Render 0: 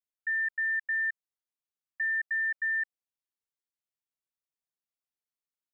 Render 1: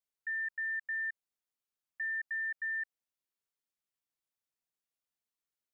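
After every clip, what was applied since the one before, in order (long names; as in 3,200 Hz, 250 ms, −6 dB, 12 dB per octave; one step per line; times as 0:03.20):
brickwall limiter −32 dBFS, peak gain reduction 6.5 dB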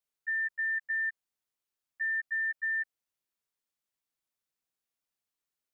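output level in coarse steps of 12 dB
level +5.5 dB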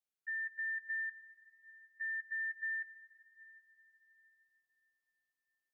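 convolution reverb RT60 5.1 s, pre-delay 82 ms, DRR 13.5 dB
level −7.5 dB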